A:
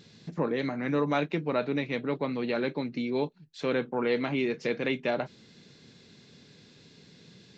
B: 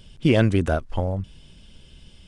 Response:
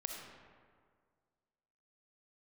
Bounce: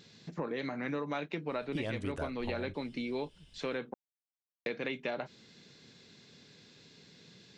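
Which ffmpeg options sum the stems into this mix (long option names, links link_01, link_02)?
-filter_complex "[0:a]volume=-1dB,asplit=3[link_01][link_02][link_03];[link_01]atrim=end=3.94,asetpts=PTS-STARTPTS,afade=type=out:start_time=3.936:duration=0.004:curve=hsin[link_04];[link_02]atrim=start=3.94:end=4.66,asetpts=PTS-STARTPTS,volume=0[link_05];[link_03]atrim=start=4.66,asetpts=PTS-STARTPTS,afade=type=in:duration=0.004:curve=hsin[link_06];[link_04][link_05][link_06]concat=n=3:v=0:a=1[link_07];[1:a]adelay=1500,volume=-10dB[link_08];[link_07][link_08]amix=inputs=2:normalize=0,lowshelf=frequency=440:gain=-5,acompressor=threshold=-32dB:ratio=6"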